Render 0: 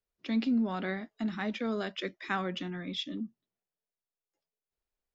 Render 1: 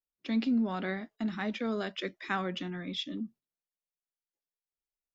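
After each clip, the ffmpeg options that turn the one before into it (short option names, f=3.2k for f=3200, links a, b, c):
-af "agate=range=-12dB:threshold=-53dB:ratio=16:detection=peak"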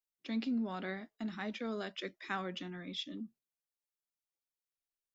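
-af "bass=f=250:g=-2,treble=f=4k:g=3,volume=-5.5dB"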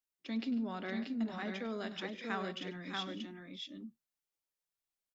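-af "aecho=1:1:101|144|602|633:0.158|0.112|0.211|0.631,volume=-1dB"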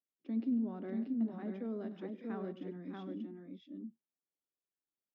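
-af "bandpass=f=280:t=q:w=1.3:csg=0,volume=3dB"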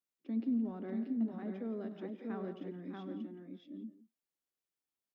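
-filter_complex "[0:a]asplit=2[a][b];[b]adelay=170,highpass=300,lowpass=3.4k,asoftclip=type=hard:threshold=-35.5dB,volume=-12dB[c];[a][c]amix=inputs=2:normalize=0"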